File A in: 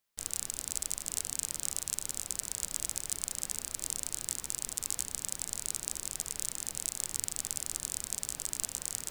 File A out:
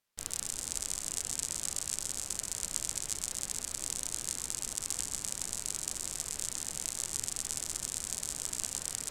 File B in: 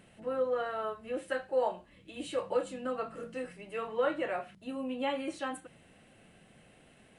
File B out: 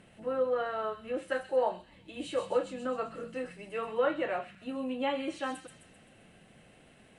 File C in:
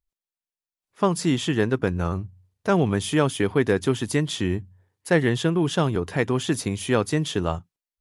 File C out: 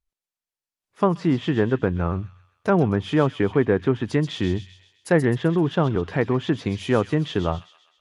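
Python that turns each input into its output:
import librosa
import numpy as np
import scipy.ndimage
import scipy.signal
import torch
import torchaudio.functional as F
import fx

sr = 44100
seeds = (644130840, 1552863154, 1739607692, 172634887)

p1 = fx.env_lowpass_down(x, sr, base_hz=1700.0, full_db=-18.5)
p2 = fx.high_shelf(p1, sr, hz=6500.0, db=-4.5)
p3 = p2 + fx.echo_wet_highpass(p2, sr, ms=130, feedback_pct=51, hz=3700.0, wet_db=-4.0, dry=0)
y = p3 * librosa.db_to_amplitude(1.5)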